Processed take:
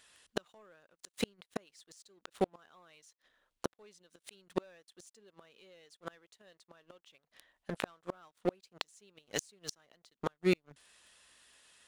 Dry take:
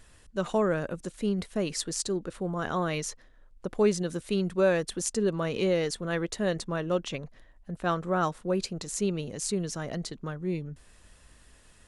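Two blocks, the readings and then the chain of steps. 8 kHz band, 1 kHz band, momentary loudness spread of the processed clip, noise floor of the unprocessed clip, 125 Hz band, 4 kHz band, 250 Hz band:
-13.0 dB, -12.0 dB, 22 LU, -57 dBFS, -15.0 dB, -8.5 dB, -12.0 dB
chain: high-pass 950 Hz 6 dB/octave; peaking EQ 3.4 kHz +5.5 dB 0.83 oct; waveshaping leveller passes 3; inverted gate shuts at -19 dBFS, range -40 dB; trim +2.5 dB

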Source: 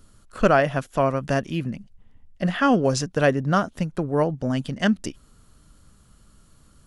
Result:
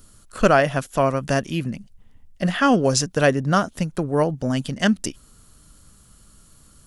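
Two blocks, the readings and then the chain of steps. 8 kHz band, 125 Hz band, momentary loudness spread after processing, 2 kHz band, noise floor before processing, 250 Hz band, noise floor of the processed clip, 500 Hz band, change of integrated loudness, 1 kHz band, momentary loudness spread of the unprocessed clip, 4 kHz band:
+8.0 dB, +1.5 dB, 10 LU, +2.5 dB, -56 dBFS, +1.5 dB, -53 dBFS, +1.5 dB, +2.0 dB, +2.0 dB, 9 LU, +5.0 dB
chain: treble shelf 5.1 kHz +10 dB; trim +1.5 dB

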